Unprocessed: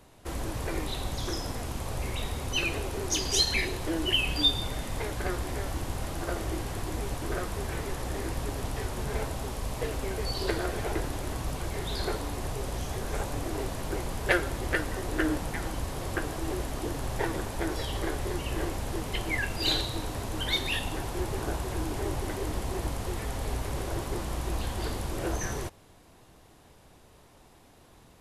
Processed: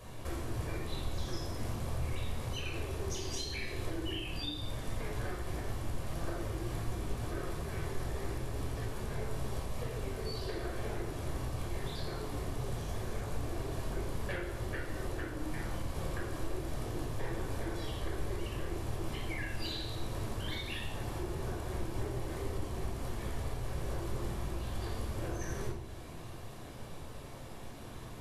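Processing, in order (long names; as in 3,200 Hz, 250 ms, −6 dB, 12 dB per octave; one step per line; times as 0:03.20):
downward compressor 10 to 1, threshold −44 dBFS, peak gain reduction 25 dB
convolution reverb RT60 0.80 s, pre-delay 18 ms, DRR −1.5 dB
flanger 1.9 Hz, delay 9.1 ms, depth 4.4 ms, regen −70%
level +6 dB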